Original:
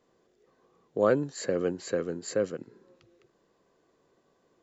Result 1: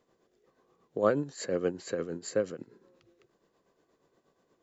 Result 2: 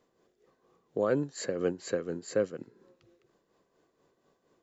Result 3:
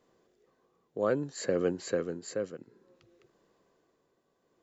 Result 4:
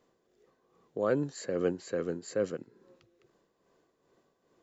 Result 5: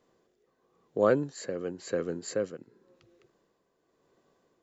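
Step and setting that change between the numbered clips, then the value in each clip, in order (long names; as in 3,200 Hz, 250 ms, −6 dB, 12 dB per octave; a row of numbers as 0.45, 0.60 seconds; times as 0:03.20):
amplitude tremolo, speed: 8.4, 4.2, 0.59, 2.4, 0.94 Hertz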